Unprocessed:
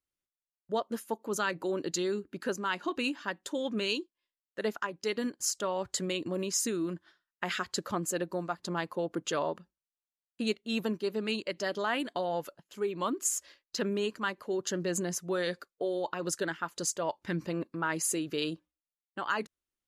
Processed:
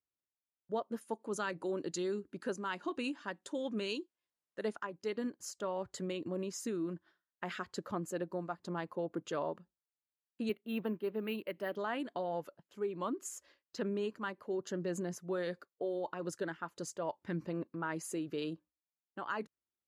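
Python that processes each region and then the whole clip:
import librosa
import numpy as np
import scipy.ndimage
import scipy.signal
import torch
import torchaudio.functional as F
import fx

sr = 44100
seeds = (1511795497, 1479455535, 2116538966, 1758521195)

y = fx.chain(x, sr, fx.high_shelf(hz=4500.0, db=8.5),
    fx.resample_bad(factor=2, down='none', up='filtered'), at=(1.01, 4.79))
y = fx.chain(y, sr, fx.highpass(hz=120.0, slope=12),
    fx.high_shelf_res(hz=4000.0, db=-10.5, q=1.5),
    fx.resample_bad(factor=3, down='filtered', up='hold'), at=(10.49, 11.76))
y = scipy.signal.sosfilt(scipy.signal.butter(2, 63.0, 'highpass', fs=sr, output='sos'), y)
y = fx.high_shelf(y, sr, hz=2100.0, db=-11.0)
y = y * 10.0 ** (-4.0 / 20.0)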